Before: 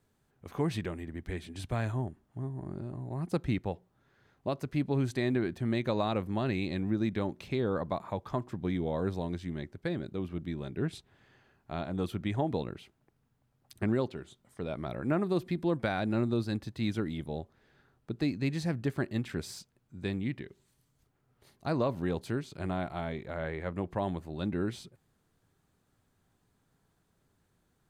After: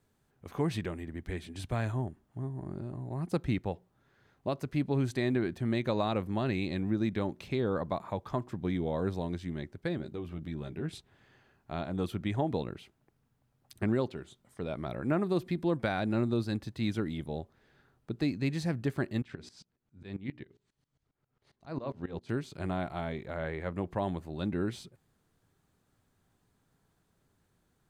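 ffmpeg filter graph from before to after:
-filter_complex "[0:a]asettb=1/sr,asplit=3[s0][s1][s2];[s0]atrim=end=9.974[s3];[s1]atrim=start=9.97:end=10.89,asetpts=PTS-STARTPTS,afade=t=in:d=0.004:c=qsin,afade=t=out:st=0.916:d=0.004:c=qsin,acompressor=threshold=0.0158:ratio=2:attack=3.2:release=140:knee=1:detection=peak,asplit=2[s4][s5];[s5]adelay=13,volume=0.447[s6];[s4][s6]amix=inputs=2:normalize=0,atrim=end_sample=40572[s7];[s2]atrim=start=10.886[s8];[s3][s7]acrossfade=d=0.004:c1=hsin:c2=qsin[s9];[s9][s8]acrossfade=d=0.004:c1=qsin:c2=hsin,asettb=1/sr,asplit=3[s10][s11][s12];[s10]atrim=end=19.224[s13];[s11]atrim=start=19.22:end=22.29,asetpts=PTS-STARTPTS,afade=t=in:d=0.004:c=qsin,afade=t=out:st=3.066:d=0.004:c=qsin,lowpass=5600,bandreject=f=60:t=h:w=6,bandreject=f=120:t=h:w=6,bandreject=f=180:t=h:w=6,bandreject=f=240:t=h:w=6,bandreject=f=300:t=h:w=6,bandreject=f=360:t=h:w=6,bandreject=f=420:t=h:w=6,aeval=exprs='val(0)*pow(10,-19*if(lt(mod(-7.4*n/s,1),2*abs(-7.4)/1000),1-mod(-7.4*n/s,1)/(2*abs(-7.4)/1000),(mod(-7.4*n/s,1)-2*abs(-7.4)/1000)/(1-2*abs(-7.4)/1000))/20)':c=same[s14];[s12]atrim=start=22.286[s15];[s13][s14]acrossfade=d=0.004:c1=hsin:c2=qsin[s16];[s16][s15]acrossfade=d=0.004:c1=qsin:c2=hsin"

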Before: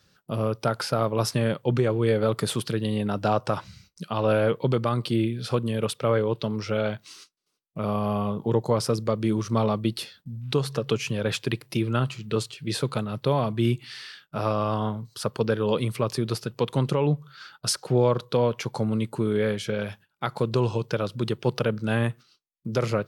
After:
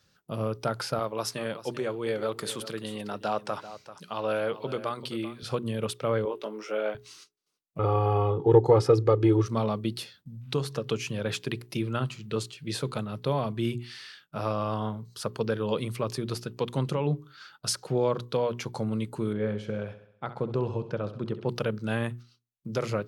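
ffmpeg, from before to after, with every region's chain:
-filter_complex "[0:a]asettb=1/sr,asplit=3[s0][s1][s2];[s0]atrim=end=0.994[s3];[s1]atrim=start=0.99:end=5.43,asetpts=PTS-STARTPTS,afade=t=in:d=0.004:c=qsin,afade=t=out:st=4.436:d=0.004:c=qsin,highpass=f=410:p=1,aecho=1:1:389:0.2,atrim=end_sample=195804[s4];[s2]atrim=start=5.426[s5];[s3][s4]acrossfade=d=0.004:c1=hsin:c2=qsin[s6];[s6][s5]acrossfade=d=0.004:c1=qsin:c2=hsin,asettb=1/sr,asplit=3[s7][s8][s9];[s7]atrim=end=6.254[s10];[s8]atrim=start=6.25:end=6.95,asetpts=PTS-STARTPTS,afade=t=in:d=0.004:c=qsin,afade=t=out:st=0.696:d=0.004:c=qsin,highpass=f=320:w=0.5412,highpass=f=320:w=1.3066,equalizer=f=4300:w=2.1:g=-12.5,asplit=2[s11][s12];[s12]adelay=19,volume=0.596[s13];[s11][s13]amix=inputs=2:normalize=0,atrim=end_sample=30870[s14];[s9]atrim=start=6.946[s15];[s10][s14]acrossfade=d=0.004:c1=hsin:c2=qsin[s16];[s16][s15]acrossfade=d=0.004:c1=qsin:c2=hsin,asettb=1/sr,asplit=3[s17][s18][s19];[s17]atrim=end=7.794[s20];[s18]atrim=start=7.79:end=9.46,asetpts=PTS-STARTPTS,afade=t=in:d=0.004:c=qsin,afade=t=out:st=1.666:d=0.004:c=qsin,lowpass=f=1200:p=1,acontrast=77,aecho=1:1:2.4:0.92,atrim=end_sample=73647[s21];[s19]atrim=start=9.456[s22];[s20][s21]acrossfade=d=0.004:c1=hsin:c2=qsin[s23];[s23][s22]acrossfade=d=0.004:c1=qsin:c2=hsin,asettb=1/sr,asplit=3[s24][s25][s26];[s24]atrim=end=19.334[s27];[s25]atrim=start=19.33:end=21.49,asetpts=PTS-STARTPTS,afade=t=in:d=0.004:c=qsin,afade=t=out:st=2.156:d=0.004:c=qsin,lowpass=f=1100:p=1,aecho=1:1:66|132|198|264|330|396:0.224|0.121|0.0653|0.0353|0.019|0.0103,atrim=end_sample=95256[s28];[s26]atrim=start=21.486[s29];[s27][s28]acrossfade=d=0.004:c1=hsin:c2=qsin[s30];[s30][s29]acrossfade=d=0.004:c1=qsin:c2=hsin,equalizer=f=6600:w=4.5:g=2,bandreject=f=60:t=h:w=6,bandreject=f=120:t=h:w=6,bandreject=f=180:t=h:w=6,bandreject=f=240:t=h:w=6,bandreject=f=300:t=h:w=6,bandreject=f=360:t=h:w=6,bandreject=f=420:t=h:w=6,volume=0.631"

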